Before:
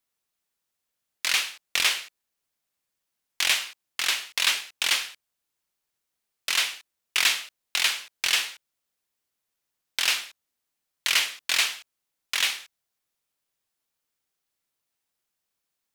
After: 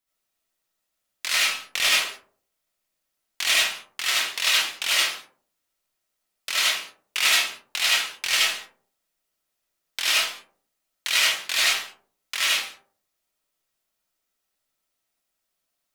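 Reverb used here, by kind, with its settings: algorithmic reverb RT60 0.51 s, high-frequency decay 0.35×, pre-delay 35 ms, DRR -6.5 dB; trim -3.5 dB

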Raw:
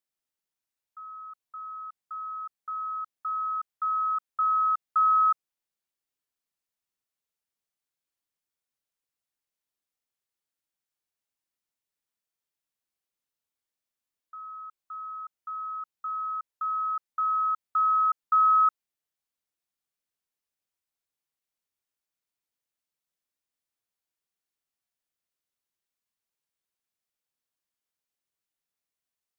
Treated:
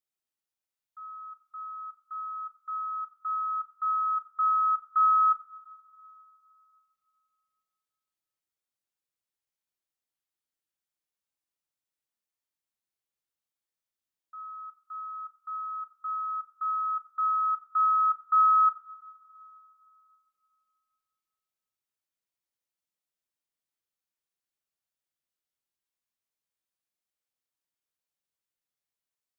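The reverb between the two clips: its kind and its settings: two-slope reverb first 0.34 s, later 2.9 s, from -18 dB, DRR 5.5 dB; trim -4.5 dB

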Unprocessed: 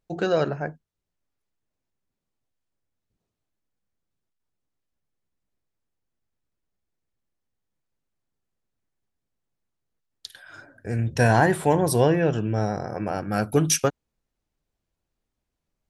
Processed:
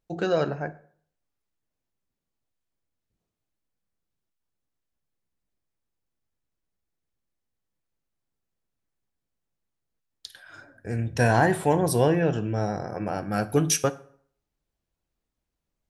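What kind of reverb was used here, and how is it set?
plate-style reverb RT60 0.55 s, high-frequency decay 0.75×, DRR 13 dB; trim -2 dB

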